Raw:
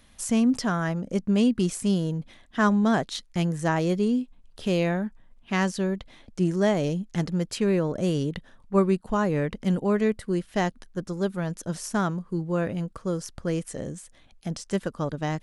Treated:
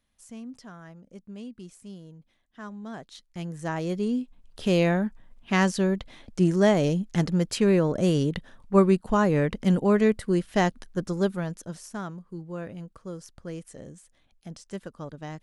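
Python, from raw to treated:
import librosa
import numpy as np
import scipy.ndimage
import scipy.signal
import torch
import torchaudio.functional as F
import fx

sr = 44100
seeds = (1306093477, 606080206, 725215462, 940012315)

y = fx.gain(x, sr, db=fx.line((2.72, -19.0), (3.66, -6.5), (4.78, 2.5), (11.22, 2.5), (11.87, -9.5)))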